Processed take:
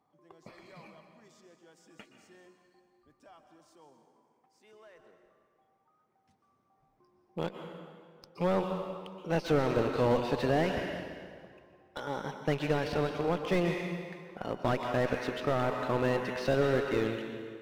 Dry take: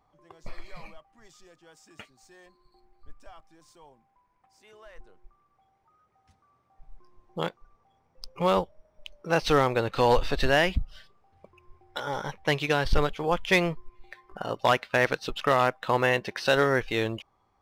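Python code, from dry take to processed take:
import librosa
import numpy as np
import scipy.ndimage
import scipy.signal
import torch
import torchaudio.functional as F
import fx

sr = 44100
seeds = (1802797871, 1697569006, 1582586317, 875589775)

y = fx.rattle_buzz(x, sr, strikes_db=-31.0, level_db=-32.0)
y = scipy.signal.sosfilt(scipy.signal.cheby1(2, 1.0, 240.0, 'highpass', fs=sr, output='sos'), y)
y = fx.rev_plate(y, sr, seeds[0], rt60_s=2.0, hf_ratio=0.8, predelay_ms=110, drr_db=6.5)
y = fx.cheby_harmonics(y, sr, harmonics=(4,), levels_db=(-20,), full_scale_db=-8.5)
y = fx.low_shelf(y, sr, hz=300.0, db=11.0)
y = fx.slew_limit(y, sr, full_power_hz=98.0)
y = y * librosa.db_to_amplitude(-6.5)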